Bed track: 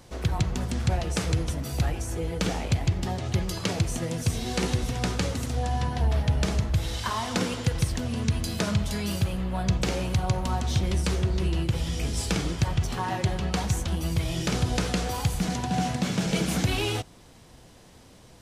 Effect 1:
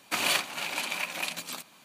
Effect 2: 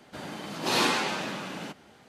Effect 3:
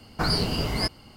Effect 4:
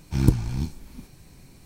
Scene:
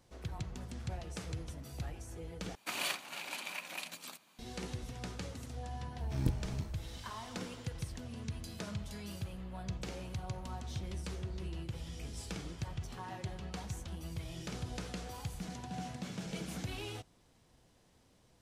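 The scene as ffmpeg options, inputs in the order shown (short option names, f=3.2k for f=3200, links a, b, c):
-filter_complex "[0:a]volume=-15.5dB[a];[4:a]asplit=2[b][c];[c]adelay=23,volume=-6.5dB[d];[b][d]amix=inputs=2:normalize=0[e];[a]asplit=2[f][g];[f]atrim=end=2.554[h];[1:a]atrim=end=1.84,asetpts=PTS-STARTPTS,volume=-10dB[i];[g]atrim=start=4.386[j];[e]atrim=end=1.65,asetpts=PTS-STARTPTS,volume=-15dB,afade=t=in:d=0.004:c=hsin,afade=t=out:st=1.646:d=0.004:c=hsin,adelay=5980[k];[h][i]acrossfade=d=0.004:c1=hsin:c2=hsin[l];[l][j]acrossfade=d=0.004:c1=hsin:c2=hsin[m];[m][k]amix=inputs=2:normalize=0"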